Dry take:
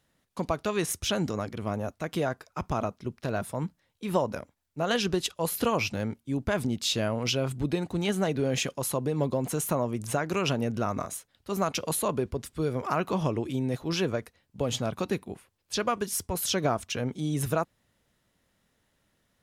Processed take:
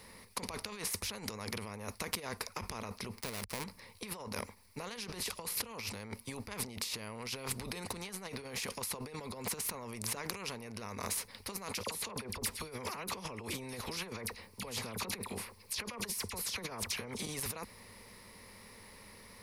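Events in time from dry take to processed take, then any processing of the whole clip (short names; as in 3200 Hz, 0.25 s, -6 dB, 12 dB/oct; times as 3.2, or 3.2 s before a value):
3.13–3.64 switching dead time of 0.25 ms
11.83–17.27 dispersion lows, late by 41 ms, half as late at 1900 Hz
whole clip: ripple EQ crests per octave 0.89, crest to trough 12 dB; negative-ratio compressor -36 dBFS, ratio -1; spectral compressor 2:1; gain +3 dB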